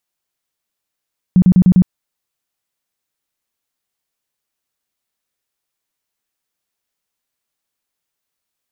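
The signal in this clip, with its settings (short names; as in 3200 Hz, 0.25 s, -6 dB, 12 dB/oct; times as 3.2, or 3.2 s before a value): tone bursts 182 Hz, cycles 11, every 0.10 s, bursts 5, -5 dBFS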